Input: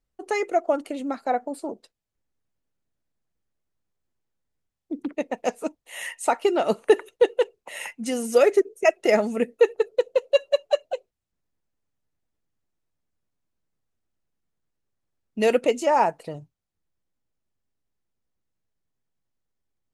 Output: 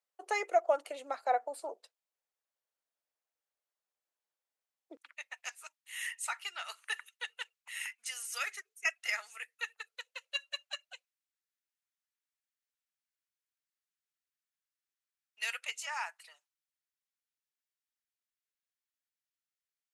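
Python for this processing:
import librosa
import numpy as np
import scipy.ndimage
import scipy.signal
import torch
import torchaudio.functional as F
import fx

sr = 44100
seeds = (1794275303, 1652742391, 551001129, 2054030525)

y = fx.highpass(x, sr, hz=fx.steps((0.0, 530.0), (4.97, 1400.0)), slope=24)
y = F.gain(torch.from_numpy(y), -4.5).numpy()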